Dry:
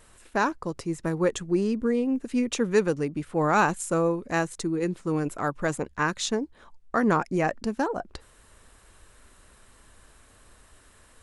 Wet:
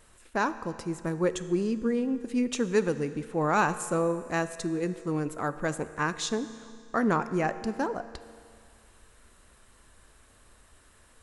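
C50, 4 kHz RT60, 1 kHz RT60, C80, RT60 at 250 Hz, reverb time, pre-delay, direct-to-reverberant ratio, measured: 13.5 dB, 2.2 s, 2.2 s, 14.0 dB, 2.2 s, 2.2 s, 4 ms, 12.0 dB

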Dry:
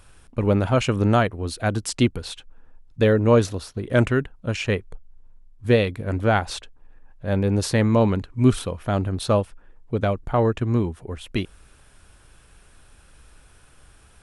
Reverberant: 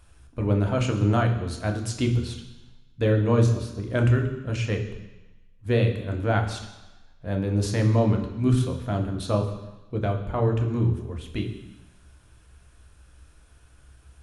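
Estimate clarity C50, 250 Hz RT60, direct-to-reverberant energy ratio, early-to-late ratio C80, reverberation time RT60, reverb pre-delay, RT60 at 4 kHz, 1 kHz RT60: 8.5 dB, 1.1 s, 3.0 dB, 10.5 dB, 1.1 s, 3 ms, 1.1 s, 1.2 s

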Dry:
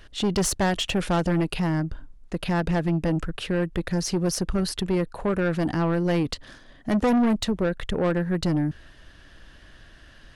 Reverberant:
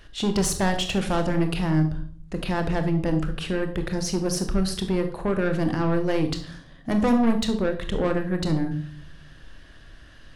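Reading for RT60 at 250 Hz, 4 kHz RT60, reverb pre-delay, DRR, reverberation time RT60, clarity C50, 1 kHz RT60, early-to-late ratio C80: 0.80 s, 0.45 s, 25 ms, 6.5 dB, 0.50 s, 10.0 dB, 0.50 s, 14.5 dB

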